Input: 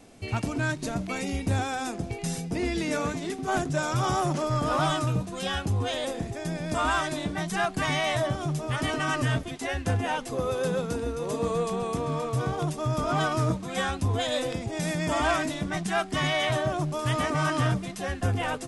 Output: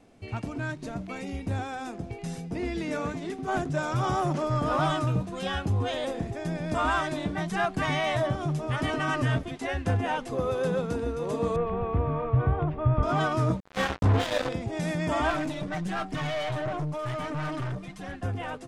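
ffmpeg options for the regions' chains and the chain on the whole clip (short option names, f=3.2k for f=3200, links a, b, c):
-filter_complex "[0:a]asettb=1/sr,asplit=3[a][b][c];[a]atrim=end=11.564[d];[b]atrim=start=11.56:end=13.03,asetpts=PTS-STARTPTS,afade=t=in:d=0.004:c=qsin,afade=t=out:st=1.466:d=0.004:c=qsin,lowpass=f=2.5k:w=0.5412,lowpass=f=2.5k:w=1.3066,lowshelf=f=120:t=q:w=1.5:g=11.5[e];[c]atrim=start=13.026[f];[d][e]acrossfade=d=0.004:c1=hsin:c2=qsin[g];[g][f]acrossfade=d=0.004:c1=qsin:c2=hsin,asettb=1/sr,asplit=3[h][i][j];[h]atrim=end=13.604[k];[i]atrim=start=13.6:end=14.49,asetpts=PTS-STARTPTS,afade=t=in:d=0.004:c=qsin,afade=t=out:st=0.886:d=0.004:c=qsin,lowpass=6.2k,asplit=2[l][m];[m]adelay=30,volume=-5dB[n];[l][n]amix=inputs=2:normalize=0,atrim=end_sample=39249,acrusher=bits=3:mix=0:aa=0.5[o];[j]atrim=start=14.486[p];[k][o]acrossfade=d=0.004:c1=hsin:c2=qsin[q];[q][p]acrossfade=d=0.004:c1=qsin:c2=hsin,asettb=1/sr,asplit=3[r][s][t];[r]atrim=end=15.304[u];[s]atrim=start=15.3:end=18.16,asetpts=PTS-STARTPTS,afade=t=in:d=0.004:c=qsin,afade=t=out:st=2.856:d=0.004:c=qsin,aecho=1:1:6.6:0.61,atrim=end_sample=126126,aphaser=in_gain=1:out_gain=1:delay=1.7:decay=0.36:speed=1.4:type=sinusoidal,aeval=exprs='(tanh(17.8*val(0)+0.35)-tanh(0.35))/17.8':c=same[v];[t]atrim=start=18.156[w];[u][v]acrossfade=d=0.004:c1=hsin:c2=qsin[x];[x][w]acrossfade=d=0.004:c1=qsin:c2=hsin,dynaudnorm=f=730:g=9:m=5dB,highshelf=f=4.4k:g=-11,volume=-4.5dB"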